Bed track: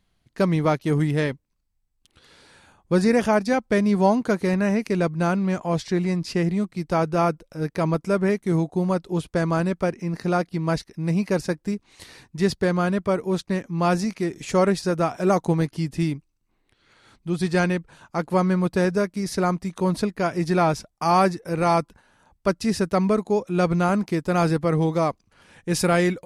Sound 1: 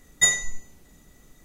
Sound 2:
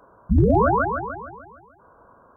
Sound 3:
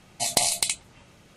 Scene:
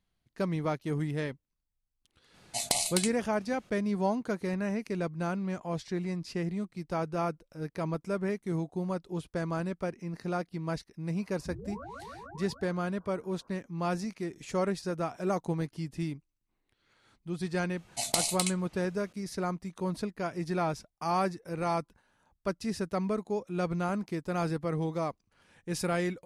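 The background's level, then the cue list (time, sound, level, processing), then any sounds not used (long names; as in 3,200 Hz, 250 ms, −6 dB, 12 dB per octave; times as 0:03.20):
bed track −10.5 dB
0:02.34: mix in 3 −6.5 dB
0:11.16: mix in 2 −11 dB + downward compressor 4 to 1, threshold −32 dBFS
0:17.77: mix in 3 −6.5 dB
not used: 1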